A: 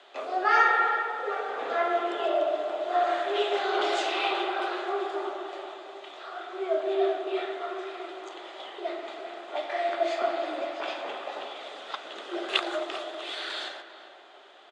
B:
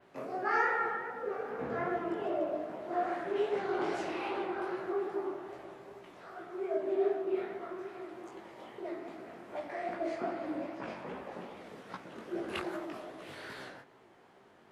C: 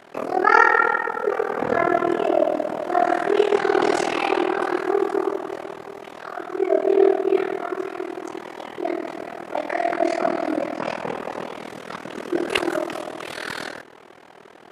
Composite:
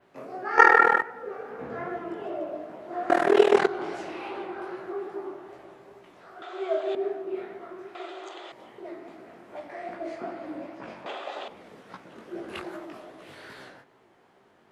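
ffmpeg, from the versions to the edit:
-filter_complex "[2:a]asplit=2[a][b];[0:a]asplit=3[c][d][e];[1:a]asplit=6[f][g][h][i][j][k];[f]atrim=end=0.582[l];[a]atrim=start=0.578:end=1.022[m];[g]atrim=start=1.018:end=3.102[n];[b]atrim=start=3.098:end=3.672[o];[h]atrim=start=3.668:end=6.422[p];[c]atrim=start=6.418:end=6.952[q];[i]atrim=start=6.948:end=7.952[r];[d]atrim=start=7.948:end=8.522[s];[j]atrim=start=8.518:end=11.062[t];[e]atrim=start=11.058:end=11.482[u];[k]atrim=start=11.478[v];[l][m]acrossfade=d=0.004:c1=hsin:c2=hsin[w];[w][n]acrossfade=d=0.004:c1=hsin:c2=hsin[x];[x][o]acrossfade=d=0.004:c1=hsin:c2=hsin[y];[y][p]acrossfade=d=0.004:c1=hsin:c2=hsin[z];[z][q]acrossfade=d=0.004:c1=hsin:c2=hsin[aa];[aa][r]acrossfade=d=0.004:c1=hsin:c2=hsin[ab];[ab][s]acrossfade=d=0.004:c1=hsin:c2=hsin[ac];[ac][t]acrossfade=d=0.004:c1=hsin:c2=hsin[ad];[ad][u]acrossfade=d=0.004:c1=hsin:c2=hsin[ae];[ae][v]acrossfade=d=0.004:c1=hsin:c2=hsin"

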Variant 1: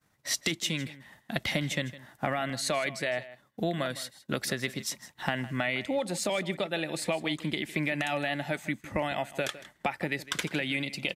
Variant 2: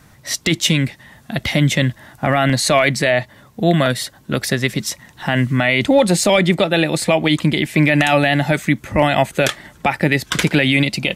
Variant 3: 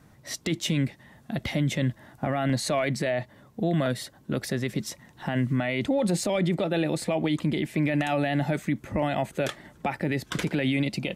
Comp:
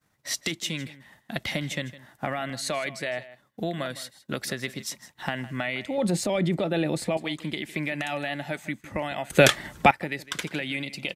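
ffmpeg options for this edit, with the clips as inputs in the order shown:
-filter_complex "[0:a]asplit=3[a][b][c];[a]atrim=end=5.982[d];[2:a]atrim=start=5.978:end=7.172[e];[b]atrim=start=7.168:end=9.302[f];[1:a]atrim=start=9.298:end=9.912[g];[c]atrim=start=9.908[h];[d][e]acrossfade=d=0.004:c1=hsin:c2=hsin[i];[i][f]acrossfade=d=0.004:c1=hsin:c2=hsin[j];[j][g]acrossfade=d=0.004:c1=hsin:c2=hsin[k];[k][h]acrossfade=d=0.004:c1=hsin:c2=hsin"

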